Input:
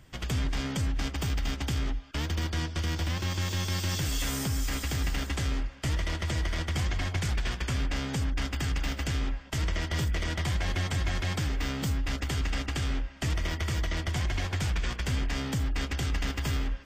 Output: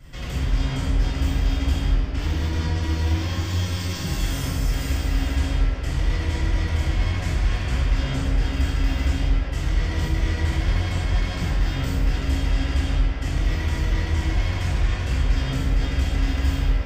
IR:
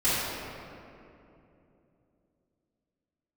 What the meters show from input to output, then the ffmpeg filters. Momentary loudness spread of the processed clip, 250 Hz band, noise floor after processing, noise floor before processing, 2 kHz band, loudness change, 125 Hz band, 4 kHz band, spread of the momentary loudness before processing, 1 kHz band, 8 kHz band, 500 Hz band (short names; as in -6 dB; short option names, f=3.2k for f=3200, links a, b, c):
2 LU, +6.0 dB, -28 dBFS, -40 dBFS, +3.0 dB, +6.5 dB, +7.5 dB, +2.0 dB, 2 LU, +4.0 dB, -0.5 dB, +5.5 dB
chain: -filter_complex "[0:a]alimiter=level_in=7.5dB:limit=-24dB:level=0:latency=1,volume=-7.5dB[a];[1:a]atrim=start_sample=2205[b];[a][b]afir=irnorm=-1:irlink=0,volume=-2.5dB"